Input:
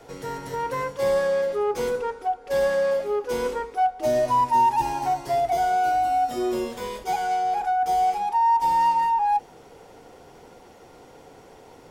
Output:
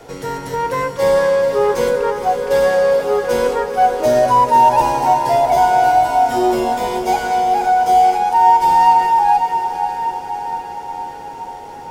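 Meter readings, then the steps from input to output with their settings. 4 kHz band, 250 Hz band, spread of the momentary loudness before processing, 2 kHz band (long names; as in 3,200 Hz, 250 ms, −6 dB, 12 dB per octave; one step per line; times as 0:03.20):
+9.0 dB, +9.0 dB, 9 LU, +9.0 dB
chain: feedback delay with all-pass diffusion 504 ms, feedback 67%, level −8 dB
level +8 dB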